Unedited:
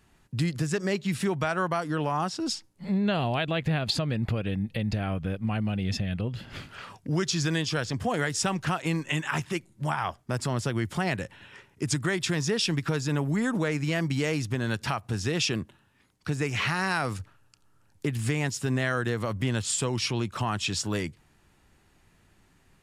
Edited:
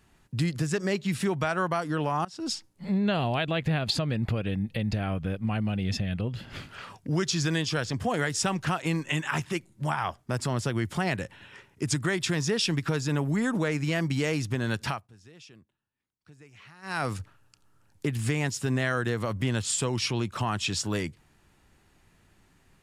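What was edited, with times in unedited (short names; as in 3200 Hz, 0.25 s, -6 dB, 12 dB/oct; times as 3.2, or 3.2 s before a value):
2.25–2.53 fade in, from -22.5 dB
14.87–17.03 dip -24 dB, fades 0.21 s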